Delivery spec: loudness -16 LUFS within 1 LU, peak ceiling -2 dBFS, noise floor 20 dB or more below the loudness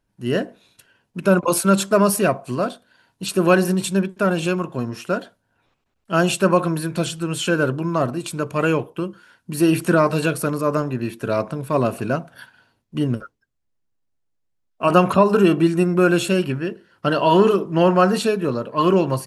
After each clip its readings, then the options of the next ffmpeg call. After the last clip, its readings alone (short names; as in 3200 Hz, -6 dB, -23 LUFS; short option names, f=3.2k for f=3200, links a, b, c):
loudness -20.0 LUFS; peak -2.0 dBFS; loudness target -16.0 LUFS
-> -af "volume=4dB,alimiter=limit=-2dB:level=0:latency=1"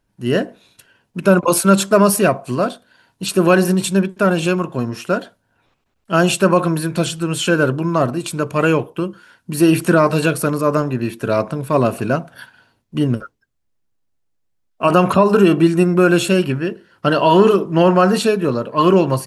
loudness -16.5 LUFS; peak -2.0 dBFS; noise floor -68 dBFS